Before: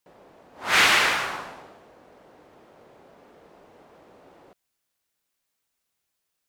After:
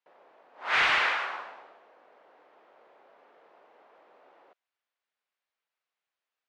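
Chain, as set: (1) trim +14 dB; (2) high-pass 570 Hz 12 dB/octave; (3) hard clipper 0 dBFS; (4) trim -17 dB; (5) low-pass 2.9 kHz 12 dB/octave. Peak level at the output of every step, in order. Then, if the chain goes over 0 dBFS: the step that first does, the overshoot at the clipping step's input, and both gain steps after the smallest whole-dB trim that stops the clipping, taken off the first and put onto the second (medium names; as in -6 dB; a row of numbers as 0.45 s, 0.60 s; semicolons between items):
+8.0 dBFS, +7.0 dBFS, 0.0 dBFS, -17.0 dBFS, -16.5 dBFS; step 1, 7.0 dB; step 1 +7 dB, step 4 -10 dB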